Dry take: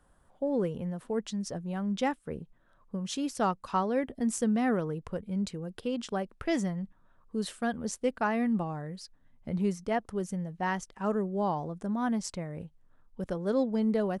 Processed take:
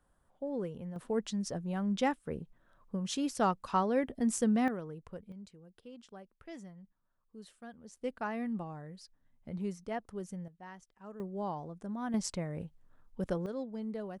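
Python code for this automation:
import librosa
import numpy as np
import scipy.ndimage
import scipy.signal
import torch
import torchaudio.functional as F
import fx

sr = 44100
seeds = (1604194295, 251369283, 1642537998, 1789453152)

y = fx.gain(x, sr, db=fx.steps((0.0, -7.5), (0.96, -1.0), (4.68, -10.0), (5.32, -18.0), (7.97, -8.0), (10.48, -18.5), (11.2, -7.5), (12.14, 0.0), (13.46, -11.5)))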